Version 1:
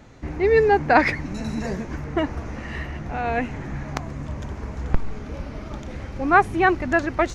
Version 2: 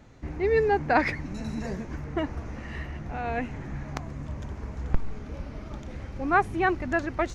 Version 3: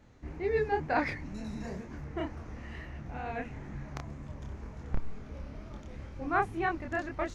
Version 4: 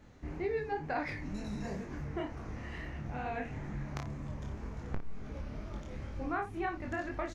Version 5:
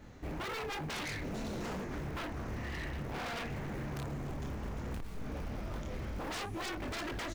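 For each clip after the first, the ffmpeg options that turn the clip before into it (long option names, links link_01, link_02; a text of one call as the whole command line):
ffmpeg -i in.wav -af "lowshelf=frequency=200:gain=3,volume=-6.5dB" out.wav
ffmpeg -i in.wav -af "flanger=delay=22.5:depth=7.4:speed=2.1,volume=-3.5dB" out.wav
ffmpeg -i in.wav -filter_complex "[0:a]acompressor=threshold=-35dB:ratio=4,asplit=2[link_01][link_02];[link_02]aecho=0:1:20|57:0.376|0.282[link_03];[link_01][link_03]amix=inputs=2:normalize=0,volume=1dB" out.wav
ffmpeg -i in.wav -af "acrusher=bits=8:mode=log:mix=0:aa=0.000001,aeval=exprs='0.0119*(abs(mod(val(0)/0.0119+3,4)-2)-1)':channel_layout=same,volume=4.5dB" out.wav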